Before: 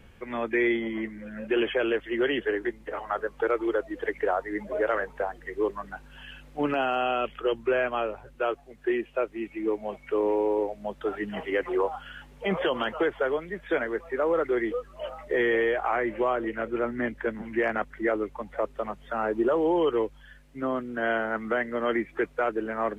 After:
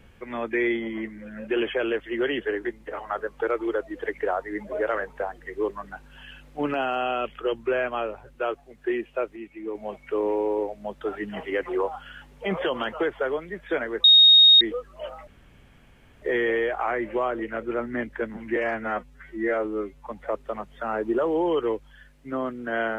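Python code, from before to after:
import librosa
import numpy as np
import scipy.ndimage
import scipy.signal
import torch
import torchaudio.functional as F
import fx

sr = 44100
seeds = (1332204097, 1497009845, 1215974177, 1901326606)

y = fx.edit(x, sr, fx.clip_gain(start_s=9.36, length_s=0.39, db=-5.5),
    fx.bleep(start_s=14.04, length_s=0.57, hz=3730.0, db=-10.0),
    fx.insert_room_tone(at_s=15.27, length_s=0.95),
    fx.stretch_span(start_s=17.61, length_s=0.75, factor=2.0), tone=tone)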